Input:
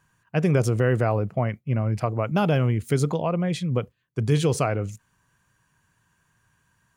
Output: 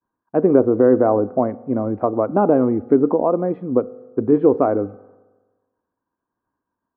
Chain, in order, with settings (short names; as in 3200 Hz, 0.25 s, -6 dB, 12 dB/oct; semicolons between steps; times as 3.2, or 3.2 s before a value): expander -56 dBFS; LPF 1100 Hz 24 dB/oct; resonant low shelf 200 Hz -10.5 dB, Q 3; reverb RT60 1.3 s, pre-delay 3 ms, DRR 19 dB; gain +7 dB